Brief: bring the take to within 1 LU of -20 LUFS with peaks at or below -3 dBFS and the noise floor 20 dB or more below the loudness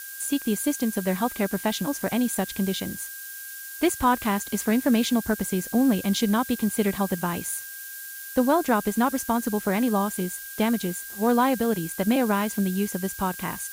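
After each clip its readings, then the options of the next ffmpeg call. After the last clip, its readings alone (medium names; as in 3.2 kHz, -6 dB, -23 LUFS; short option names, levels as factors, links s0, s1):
steady tone 1.6 kHz; tone level -42 dBFS; noise floor -39 dBFS; noise floor target -45 dBFS; loudness -25.0 LUFS; peak level -8.5 dBFS; loudness target -20.0 LUFS
-> -af "bandreject=f=1600:w=30"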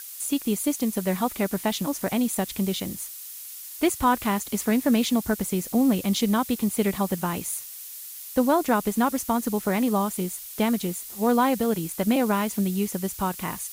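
steady tone not found; noise floor -40 dBFS; noise floor target -45 dBFS
-> -af "afftdn=nr=6:nf=-40"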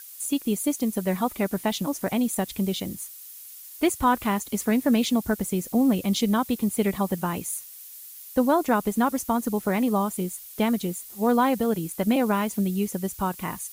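noise floor -43 dBFS; noise floor target -46 dBFS
-> -af "afftdn=nr=6:nf=-43"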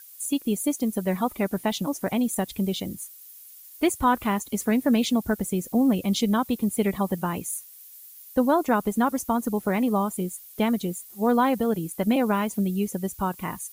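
noise floor -47 dBFS; loudness -25.5 LUFS; peak level -9.5 dBFS; loudness target -20.0 LUFS
-> -af "volume=1.88"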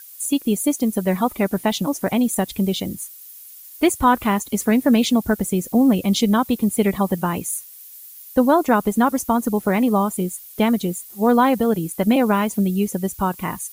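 loudness -20.0 LUFS; peak level -4.0 dBFS; noise floor -41 dBFS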